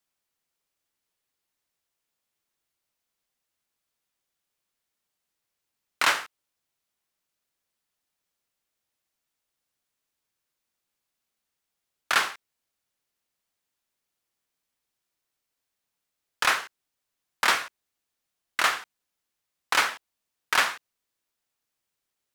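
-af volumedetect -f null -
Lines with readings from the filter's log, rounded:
mean_volume: -35.3 dB
max_volume: -8.1 dB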